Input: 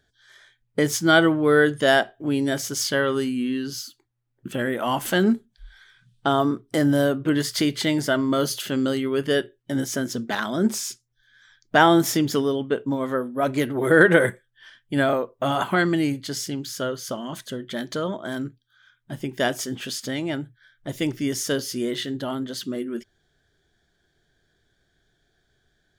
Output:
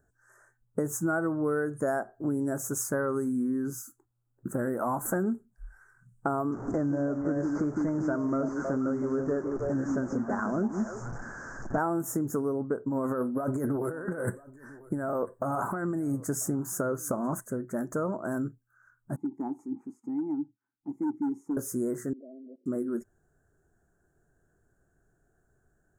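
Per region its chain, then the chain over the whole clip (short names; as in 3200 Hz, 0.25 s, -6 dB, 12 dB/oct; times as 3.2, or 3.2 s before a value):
6.52–11.78 delta modulation 32 kbps, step -29.5 dBFS + delay with a stepping band-pass 0.159 s, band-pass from 250 Hz, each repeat 1.4 oct, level -1.5 dB
12.88–17.4 negative-ratio compressor -27 dBFS + echo 0.994 s -24 dB
19.16–21.57 vowel filter u + small resonant body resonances 210/790/3800 Hz, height 7 dB, ringing for 25 ms + hard clip -24 dBFS
22.13–22.66 Chebyshev band-pass 240–670 Hz, order 5 + level quantiser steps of 23 dB
whole clip: Chebyshev band-stop 1400–7300 Hz, order 3; compressor, threshold -26 dBFS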